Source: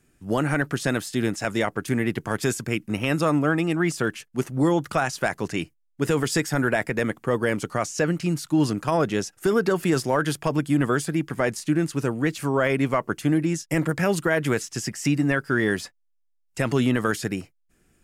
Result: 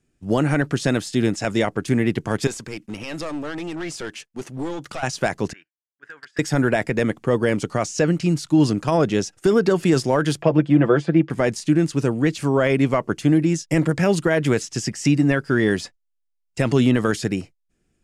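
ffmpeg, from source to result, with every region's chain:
-filter_complex "[0:a]asettb=1/sr,asplit=3[s0][s1][s2];[s0]atrim=end=2.474[s3];[s1]atrim=start=2.47:end=5.03,asetpts=PTS-STARTPTS,afade=t=in:d=0.004:c=qsin,afade=t=out:st=2.556:d=0.004:c=qsin,lowshelf=f=260:g=-11,acompressor=threshold=0.0224:ratio=1.5:attack=3.2:release=140:knee=1:detection=peak,aeval=exprs='clip(val(0),-1,0.0237)':c=same[s4];[s2]atrim=start=5.026[s5];[s3][s4]acrossfade=d=0.004:c1=hsin:c2=qsin[s6];[s6][s5]acrossfade=d=0.004:c1=qsin:c2=hsin,asettb=1/sr,asplit=3[s7][s8][s9];[s7]atrim=end=5.534[s10];[s8]atrim=start=5.53:end=6.39,asetpts=PTS-STARTPTS,afade=t=in:d=0.004:c=qsin,afade=t=out:st=0.856:d=0.004:c=qsin,bandpass=f=1600:t=q:w=11,aeval=exprs='0.0282*(abs(mod(val(0)/0.0282+3,4)-2)-1)':c=same[s11];[s9]atrim=start=6.386[s12];[s10][s11]acrossfade=d=0.004:c1=hsin:c2=qsin[s13];[s13][s12]acrossfade=d=0.004:c1=qsin:c2=hsin,asettb=1/sr,asplit=3[s14][s15][s16];[s14]atrim=end=10.424[s17];[s15]atrim=start=10.42:end=11.3,asetpts=PTS-STARTPTS,afade=t=in:d=0.004:c=qsin,afade=t=out:st=0.876:d=0.004:c=qsin,highpass=130,lowpass=2700,equalizer=f=580:t=o:w=0.67:g=6,aecho=1:1:5.9:0.55,atrim=end_sample=38808[s18];[s16]atrim=start=11.296[s19];[s17][s18]acrossfade=d=0.004:c1=hsin:c2=qsin[s20];[s20][s19]acrossfade=d=0.004:c1=qsin:c2=hsin,lowpass=7400,agate=range=0.316:threshold=0.00562:ratio=16:detection=peak,equalizer=f=1400:t=o:w=1.6:g=-5.5,volume=1.78"

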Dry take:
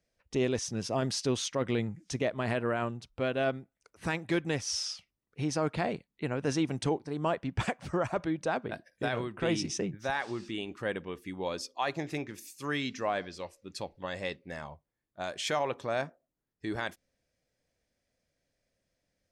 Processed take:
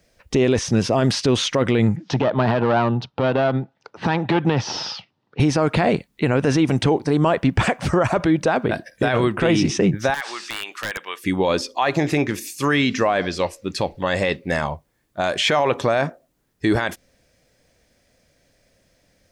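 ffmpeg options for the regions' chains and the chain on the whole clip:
-filter_complex "[0:a]asettb=1/sr,asplit=3[s0][s1][s2];[s0]atrim=end=1.964[s3];[s1]atrim=start=1.96:end=5.4,asetpts=PTS-STARTPTS,afade=t=in:d=0.004:c=qsin,afade=t=out:st=3.436:d=0.004:c=qsin,aeval=exprs='clip(val(0),-1,0.0282)':c=same,highpass=f=110:w=0.5412,highpass=f=110:w=1.3066,equalizer=f=130:t=q:w=4:g=3,equalizer=f=860:t=q:w=4:g=9,equalizer=f=2200:t=q:w=4:g=-6,lowpass=f=4400:w=0.5412,lowpass=f=4400:w=1.3066[s4];[s2]atrim=start=5.396[s5];[s3][s4]acrossfade=d=0.004:c1=hsin:c2=qsin[s6];[s6][s5]acrossfade=d=0.004:c1=qsin:c2=hsin,asettb=1/sr,asplit=3[s7][s8][s9];[s7]atrim=end=10.144[s10];[s8]atrim=start=10.14:end=11.24,asetpts=PTS-STARTPTS,afade=t=in:d=0.004:c=qsin,afade=t=out:st=1.096:d=0.004:c=qsin,highpass=1200,acompressor=threshold=0.0126:ratio=20:attack=3.2:release=140:knee=1:detection=peak,aeval=exprs='(mod(47.3*val(0)+1,2)-1)/47.3':c=same[s11];[s9]atrim=start=11.236[s12];[s10][s11]acrossfade=d=0.004:c1=hsin:c2=qsin[s13];[s13][s12]acrossfade=d=0.004:c1=qsin:c2=hsin,acrossover=split=3500[s14][s15];[s15]acompressor=threshold=0.00355:ratio=4:attack=1:release=60[s16];[s14][s16]amix=inputs=2:normalize=0,alimiter=level_in=22.4:limit=0.891:release=50:level=0:latency=1,volume=0.398"

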